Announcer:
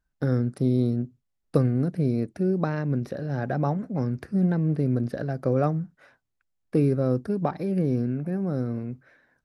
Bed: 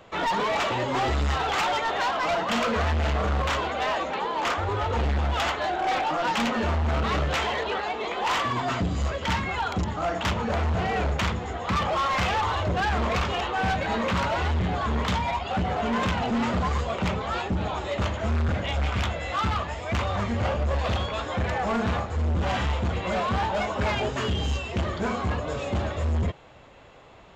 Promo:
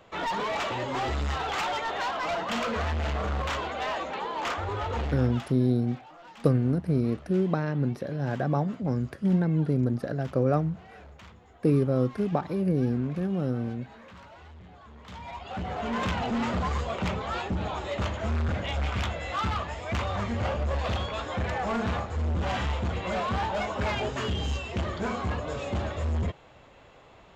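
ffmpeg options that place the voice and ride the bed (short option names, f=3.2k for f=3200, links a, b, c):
-filter_complex "[0:a]adelay=4900,volume=-1dB[a];[1:a]volume=16dB,afade=t=out:st=4.97:d=0.54:silence=0.112202,afade=t=in:st=15.02:d=1.09:silence=0.0944061[b];[a][b]amix=inputs=2:normalize=0"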